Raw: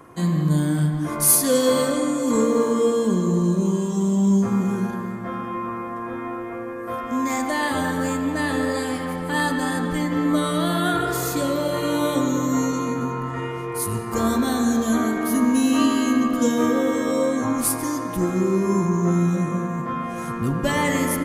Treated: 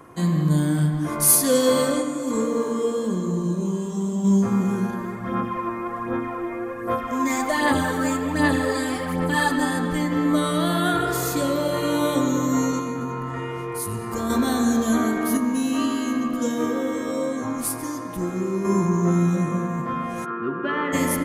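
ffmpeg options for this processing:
ffmpeg -i in.wav -filter_complex "[0:a]asplit=3[link_01][link_02][link_03];[link_01]afade=type=out:start_time=2.01:duration=0.02[link_04];[link_02]flanger=delay=6.6:depth=9.7:regen=-66:speed=1.2:shape=triangular,afade=type=in:start_time=2.01:duration=0.02,afade=type=out:start_time=4.24:duration=0.02[link_05];[link_03]afade=type=in:start_time=4.24:duration=0.02[link_06];[link_04][link_05][link_06]amix=inputs=3:normalize=0,asplit=3[link_07][link_08][link_09];[link_07]afade=type=out:start_time=4.97:duration=0.02[link_10];[link_08]aphaser=in_gain=1:out_gain=1:delay=3.3:decay=0.49:speed=1.3:type=sinusoidal,afade=type=in:start_time=4.97:duration=0.02,afade=type=out:start_time=9.65:duration=0.02[link_11];[link_09]afade=type=in:start_time=9.65:duration=0.02[link_12];[link_10][link_11][link_12]amix=inputs=3:normalize=0,asettb=1/sr,asplit=3[link_13][link_14][link_15];[link_13]atrim=end=12.794[link_16];[link_14]atrim=start=12.79:end=14.3,asetpts=PTS-STARTPTS,afade=type=in:duration=0.004:curve=qsin,afade=type=out:start_time=1.506:duration=0.004:curve=qsin,acompressor=threshold=-26dB:ratio=2:attack=3.2:release=140:knee=1:detection=peak[link_17];[link_15]atrim=start=14.296[link_18];[link_16][link_17]acrossfade=duration=0.004:curve1=hsin:curve2=qsin[link_19];[link_19][link_18]acrossfade=duration=0.004:curve1=qsin:curve2=hsin,asettb=1/sr,asplit=3[link_20][link_21][link_22];[link_20]atrim=end=15.374[link_23];[link_21]atrim=start=15.37:end=18.65,asetpts=PTS-STARTPTS,afade=type=in:duration=0.004:curve=qsin,afade=type=out:start_time=3.276:duration=0.004:curve=qsin,flanger=delay=6.1:depth=7.2:regen=87:speed=1.6:shape=triangular[link_24];[link_22]atrim=start=18.646[link_25];[link_23][link_24]acrossfade=duration=0.004:curve1=hsin:curve2=qsin[link_26];[link_26][link_25]acrossfade=duration=0.004:curve1=qsin:curve2=hsin,asplit=3[link_27][link_28][link_29];[link_27]afade=type=out:start_time=20.24:duration=0.02[link_30];[link_28]highpass=340,equalizer=frequency=380:width_type=q:width=4:gain=9,equalizer=frequency=550:width_type=q:width=4:gain=-9,equalizer=frequency=830:width_type=q:width=4:gain=-8,equalizer=frequency=1400:width_type=q:width=4:gain=8,equalizer=frequency=2100:width_type=q:width=4:gain=-9,lowpass=frequency=2600:width=0.5412,lowpass=frequency=2600:width=1.3066,afade=type=in:start_time=20.24:duration=0.02,afade=type=out:start_time=20.92:duration=0.02[link_31];[link_29]afade=type=in:start_time=20.92:duration=0.02[link_32];[link_30][link_31][link_32]amix=inputs=3:normalize=0" out.wav

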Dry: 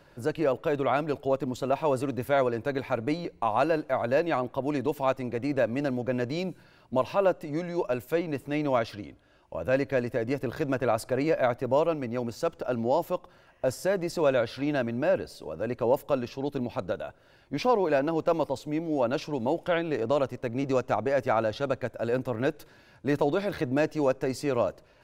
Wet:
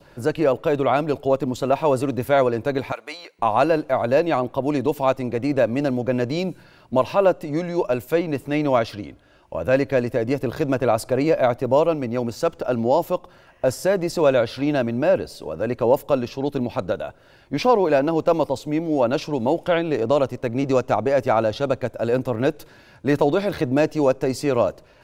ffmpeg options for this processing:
ffmpeg -i in.wav -filter_complex "[0:a]asettb=1/sr,asplit=3[link_01][link_02][link_03];[link_01]atrim=end=2.924[link_04];[link_02]atrim=start=2.92:end=3.39,asetpts=PTS-STARTPTS,afade=type=in:duration=0.004:curve=qsin,afade=type=out:start_time=0.466:duration=0.004:curve=qsin,highpass=1100[link_05];[link_03]atrim=start=3.386[link_06];[link_04][link_05]acrossfade=duration=0.004:curve1=hsin:curve2=qsin[link_07];[link_07][link_06]acrossfade=duration=0.004:curve1=qsin:curve2=hsin,adynamicequalizer=threshold=0.00447:dfrequency=1700:dqfactor=1.8:tfrequency=1700:tqfactor=1.8:attack=5:release=100:ratio=0.375:range=2.5:mode=cutabove:tftype=bell,volume=7dB" out.wav

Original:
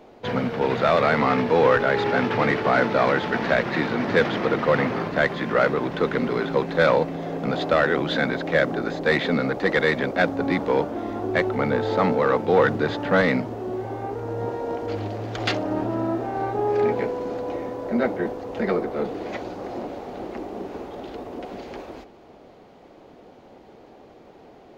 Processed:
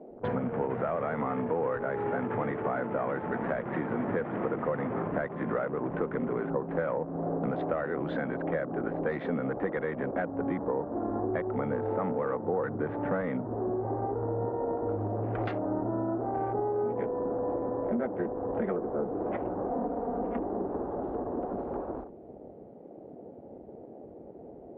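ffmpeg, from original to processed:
ffmpeg -i in.wav -filter_complex "[0:a]asettb=1/sr,asplit=3[link_01][link_02][link_03];[link_01]atrim=end=19.694[link_04];[link_02]atrim=start=19.69:end=20.4,asetpts=PTS-STARTPTS,afade=type=in:duration=0.004:curve=qsin,afade=type=out:start_time=0.706:duration=0.004:curve=qsin,aecho=1:1:4.2:0.8,atrim=end_sample=31311[link_05];[link_03]atrim=start=20.396[link_06];[link_04][link_05]acrossfade=duration=0.004:curve1=hsin:curve2=qsin[link_07];[link_07][link_06]acrossfade=duration=0.004:curve1=qsin:curve2=hsin,acompressor=threshold=-30dB:ratio=6,afwtdn=0.00631,lowpass=1300,volume=2.5dB" out.wav

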